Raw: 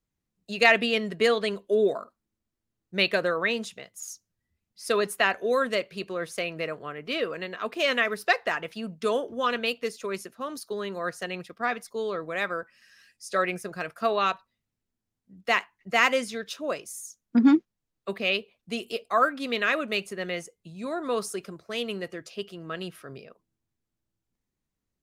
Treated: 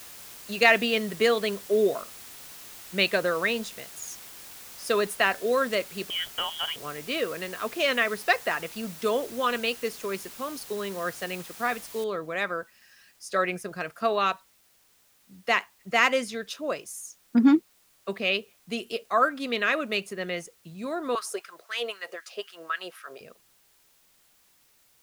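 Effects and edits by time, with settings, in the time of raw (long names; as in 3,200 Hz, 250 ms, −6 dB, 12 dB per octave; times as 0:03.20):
0:06.10–0:06.76: voice inversion scrambler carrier 3,500 Hz
0:12.04: noise floor change −45 dB −63 dB
0:21.15–0:23.21: auto-filter high-pass sine 3.9 Hz 500–1,600 Hz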